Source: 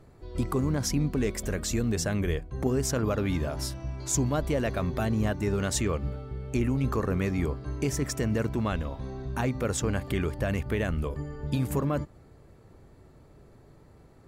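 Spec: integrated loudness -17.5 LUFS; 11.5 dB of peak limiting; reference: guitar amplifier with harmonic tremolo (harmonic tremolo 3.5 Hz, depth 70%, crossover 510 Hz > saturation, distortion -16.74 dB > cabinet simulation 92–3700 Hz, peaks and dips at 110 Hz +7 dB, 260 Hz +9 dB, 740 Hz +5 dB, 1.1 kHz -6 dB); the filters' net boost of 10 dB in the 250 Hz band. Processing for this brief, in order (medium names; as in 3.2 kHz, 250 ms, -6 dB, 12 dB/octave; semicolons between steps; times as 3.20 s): peaking EQ 250 Hz +5 dB; peak limiter -23.5 dBFS; harmonic tremolo 3.5 Hz, depth 70%, crossover 510 Hz; saturation -28.5 dBFS; cabinet simulation 92–3700 Hz, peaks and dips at 110 Hz +7 dB, 260 Hz +9 dB, 740 Hz +5 dB, 1.1 kHz -6 dB; trim +17 dB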